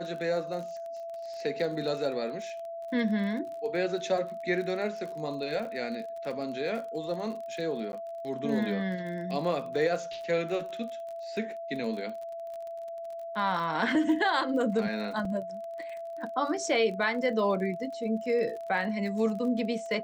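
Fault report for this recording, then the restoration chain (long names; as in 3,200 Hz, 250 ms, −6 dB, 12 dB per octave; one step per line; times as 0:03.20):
surface crackle 36 per second −38 dBFS
whistle 670 Hz −36 dBFS
0:07.92–0:07.93: drop-out 11 ms
0:15.25: drop-out 3.2 ms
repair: click removal
notch filter 670 Hz, Q 30
repair the gap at 0:07.92, 11 ms
repair the gap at 0:15.25, 3.2 ms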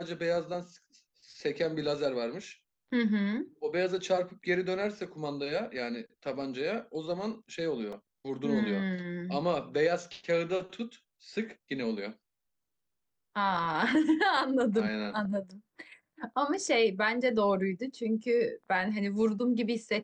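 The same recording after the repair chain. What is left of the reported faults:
none of them is left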